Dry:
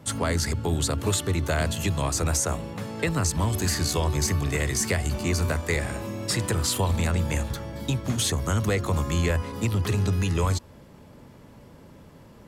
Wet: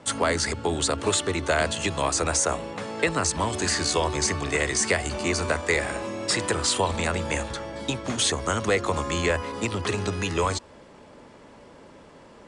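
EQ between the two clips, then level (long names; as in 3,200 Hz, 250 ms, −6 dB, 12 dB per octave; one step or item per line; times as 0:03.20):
Butterworth low-pass 9,800 Hz 96 dB per octave
bass and treble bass −10 dB, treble −3 dB
parametric band 120 Hz −4.5 dB 1.1 octaves
+5.0 dB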